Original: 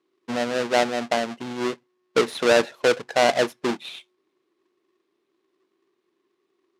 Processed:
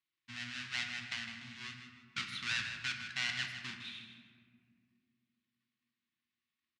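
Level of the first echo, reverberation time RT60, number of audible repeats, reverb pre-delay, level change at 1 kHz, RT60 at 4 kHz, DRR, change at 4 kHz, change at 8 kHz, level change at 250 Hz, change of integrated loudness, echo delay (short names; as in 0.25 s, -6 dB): -10.0 dB, 2.2 s, 2, 3 ms, -25.0 dB, 1.0 s, 3.0 dB, -9.0 dB, -14.0 dB, -24.5 dB, -16.0 dB, 0.157 s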